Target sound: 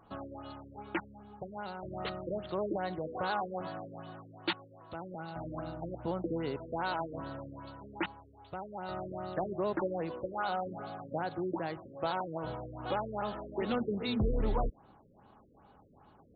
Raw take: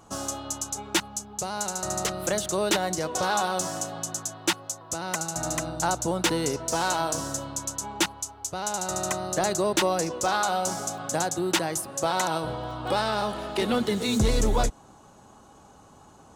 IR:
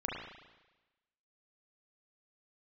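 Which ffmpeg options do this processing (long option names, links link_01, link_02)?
-af "afftfilt=real='re*lt(b*sr/1024,530*pow(4700/530,0.5+0.5*sin(2*PI*2.5*pts/sr)))':imag='im*lt(b*sr/1024,530*pow(4700/530,0.5+0.5*sin(2*PI*2.5*pts/sr)))':win_size=1024:overlap=0.75,volume=-7.5dB"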